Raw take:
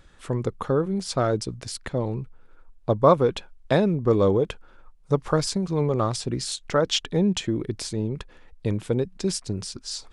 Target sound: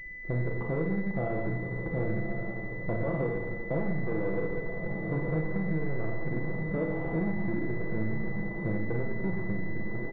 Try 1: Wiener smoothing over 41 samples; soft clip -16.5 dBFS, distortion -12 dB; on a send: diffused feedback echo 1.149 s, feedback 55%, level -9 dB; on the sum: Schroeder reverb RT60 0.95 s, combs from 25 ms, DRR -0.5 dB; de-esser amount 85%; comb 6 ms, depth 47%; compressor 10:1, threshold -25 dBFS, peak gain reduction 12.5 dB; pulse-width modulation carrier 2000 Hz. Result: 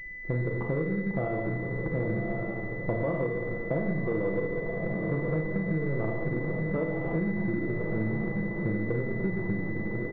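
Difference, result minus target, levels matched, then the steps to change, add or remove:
soft clip: distortion -7 dB
change: soft clip -26 dBFS, distortion -5 dB

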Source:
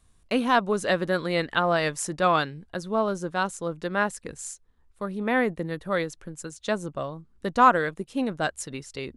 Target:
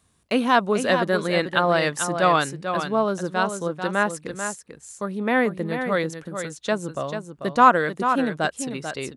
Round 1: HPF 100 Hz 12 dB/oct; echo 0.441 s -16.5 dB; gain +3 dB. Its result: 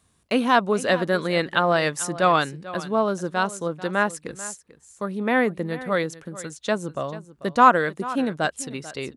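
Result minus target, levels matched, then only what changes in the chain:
echo-to-direct -8.5 dB
change: echo 0.441 s -8 dB

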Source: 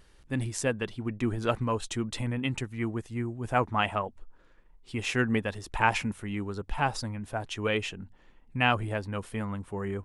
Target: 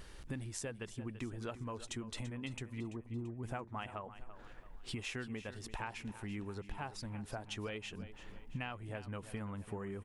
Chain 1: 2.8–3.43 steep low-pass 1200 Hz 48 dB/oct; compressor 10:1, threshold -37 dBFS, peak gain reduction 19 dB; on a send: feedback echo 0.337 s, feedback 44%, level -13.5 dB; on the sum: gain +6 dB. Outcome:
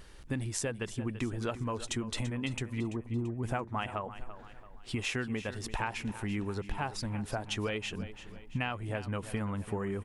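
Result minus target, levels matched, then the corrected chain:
compressor: peak gain reduction -8 dB
2.8–3.43 steep low-pass 1200 Hz 48 dB/oct; compressor 10:1, threshold -46 dBFS, peak gain reduction 27.5 dB; on a send: feedback echo 0.337 s, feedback 44%, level -13.5 dB; on the sum: gain +6 dB

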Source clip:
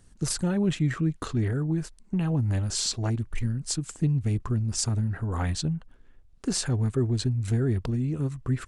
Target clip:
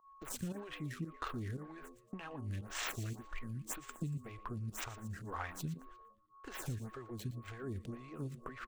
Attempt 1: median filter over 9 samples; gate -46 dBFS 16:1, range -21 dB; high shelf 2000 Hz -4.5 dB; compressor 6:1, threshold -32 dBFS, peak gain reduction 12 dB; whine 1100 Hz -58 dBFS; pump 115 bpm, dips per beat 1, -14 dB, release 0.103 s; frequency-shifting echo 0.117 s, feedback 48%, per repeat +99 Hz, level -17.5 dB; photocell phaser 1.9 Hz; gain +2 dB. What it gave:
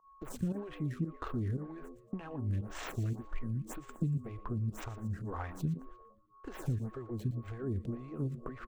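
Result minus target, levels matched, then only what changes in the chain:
1000 Hz band -5.5 dB
add after compressor: tilt shelf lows -7.5 dB, about 1000 Hz

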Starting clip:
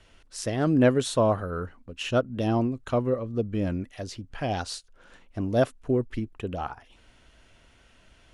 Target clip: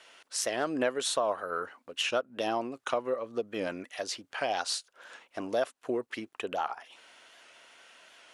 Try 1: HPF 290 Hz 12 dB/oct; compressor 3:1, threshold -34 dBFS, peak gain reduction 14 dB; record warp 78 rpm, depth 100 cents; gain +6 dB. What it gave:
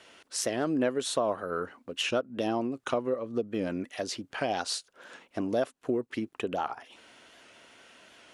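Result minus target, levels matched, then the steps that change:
250 Hz band +5.0 dB
change: HPF 600 Hz 12 dB/oct

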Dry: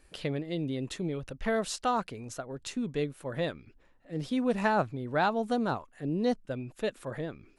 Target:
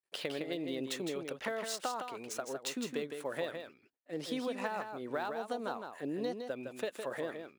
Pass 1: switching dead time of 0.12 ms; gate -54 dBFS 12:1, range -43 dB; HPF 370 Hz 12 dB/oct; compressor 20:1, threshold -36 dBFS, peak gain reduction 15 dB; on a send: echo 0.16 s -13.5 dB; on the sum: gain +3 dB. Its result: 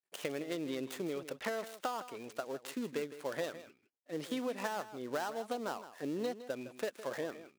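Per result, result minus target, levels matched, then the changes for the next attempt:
switching dead time: distortion +14 dB; echo-to-direct -7 dB
change: switching dead time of 0.029 ms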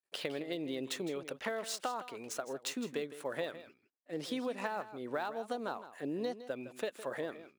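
echo-to-direct -7 dB
change: echo 0.16 s -6.5 dB

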